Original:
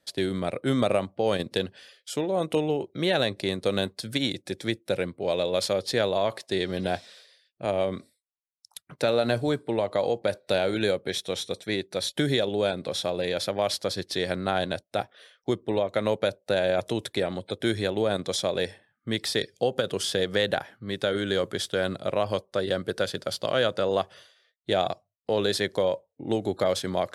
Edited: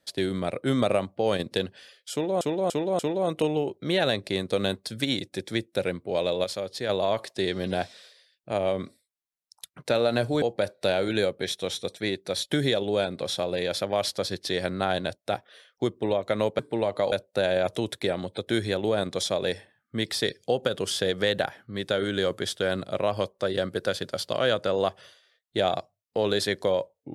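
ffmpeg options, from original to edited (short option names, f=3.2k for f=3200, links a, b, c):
-filter_complex "[0:a]asplit=9[a][b][c][d][e][f][g][h][i];[a]atrim=end=2.412[j];[b]atrim=start=2.118:end=2.412[k];[c]atrim=start=2.118:end=2.412[l];[d]atrim=start=2.118:end=5.572[m];[e]atrim=start=5.568:end=6.022,asetpts=PTS-STARTPTS,volume=-6dB[n];[f]atrim=start=6.018:end=9.552[o];[g]atrim=start=10.078:end=16.252[p];[h]atrim=start=9.548:end=10.082[q];[i]atrim=start=16.248[r];[j][k]acrossfade=d=0.004:c1=hsin:c2=hsin[s];[s][l]acrossfade=d=0.004:c1=hsin:c2=hsin[t];[t][m]acrossfade=d=0.004:c1=hsin:c2=hsin[u];[u][n]acrossfade=d=0.004:c1=hsin:c2=hsin[v];[v][o]acrossfade=d=0.004:c1=hsin:c2=hsin[w];[w][p]acrossfade=d=0.004:c1=hsin:c2=hsin[x];[x][q]acrossfade=d=0.004:c1=hsin:c2=hsin[y];[y][r]acrossfade=d=0.004:c1=hsin:c2=hsin"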